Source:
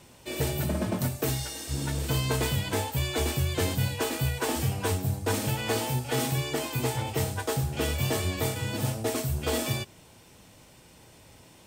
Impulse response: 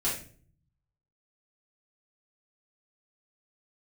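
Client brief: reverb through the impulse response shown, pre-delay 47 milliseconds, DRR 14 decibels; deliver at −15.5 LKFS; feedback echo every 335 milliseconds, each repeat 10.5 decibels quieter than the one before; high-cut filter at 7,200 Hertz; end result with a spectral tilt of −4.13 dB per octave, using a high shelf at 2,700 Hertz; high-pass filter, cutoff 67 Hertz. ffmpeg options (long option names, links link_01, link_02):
-filter_complex "[0:a]highpass=67,lowpass=7200,highshelf=frequency=2700:gain=5.5,aecho=1:1:335|670|1005:0.299|0.0896|0.0269,asplit=2[link_01][link_02];[1:a]atrim=start_sample=2205,adelay=47[link_03];[link_02][link_03]afir=irnorm=-1:irlink=0,volume=-21dB[link_04];[link_01][link_04]amix=inputs=2:normalize=0,volume=12.5dB"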